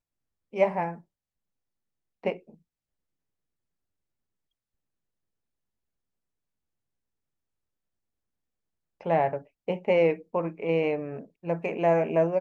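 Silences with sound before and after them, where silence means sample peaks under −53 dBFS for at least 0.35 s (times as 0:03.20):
0:01.02–0:02.24
0:02.55–0:09.01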